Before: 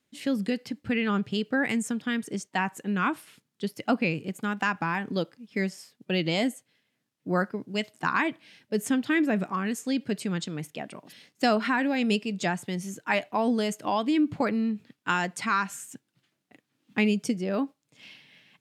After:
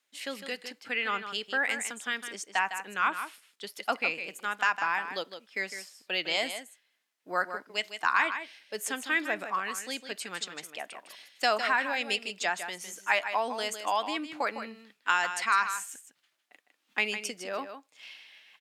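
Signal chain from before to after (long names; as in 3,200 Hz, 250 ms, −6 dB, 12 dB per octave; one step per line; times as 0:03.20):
high-pass filter 770 Hz 12 dB per octave
on a send: single-tap delay 156 ms −9.5 dB
on the sum: level +1.5 dB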